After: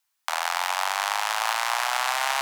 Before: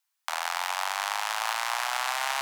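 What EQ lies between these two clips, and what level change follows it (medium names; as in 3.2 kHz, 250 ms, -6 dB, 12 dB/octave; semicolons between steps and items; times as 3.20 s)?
bass shelf 320 Hz +6.5 dB; +3.5 dB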